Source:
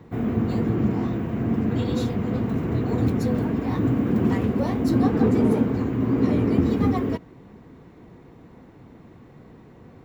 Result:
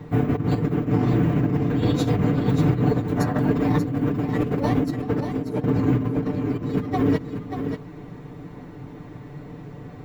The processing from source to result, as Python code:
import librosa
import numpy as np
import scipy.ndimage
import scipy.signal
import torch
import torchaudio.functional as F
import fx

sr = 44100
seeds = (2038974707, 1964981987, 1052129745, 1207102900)

y = fx.low_shelf(x, sr, hz=130.0, db=4.0)
y = fx.over_compress(y, sr, threshold_db=-24.0, ratio=-0.5)
y = y + 0.72 * np.pad(y, (int(6.8 * sr / 1000.0), 0))[:len(y)]
y = y + 10.0 ** (-7.5 / 20.0) * np.pad(y, (int(585 * sr / 1000.0), 0))[:len(y)]
y = fx.spec_box(y, sr, start_s=3.17, length_s=0.23, low_hz=560.0, high_hz=2000.0, gain_db=8)
y = y * librosa.db_to_amplitude(1.0)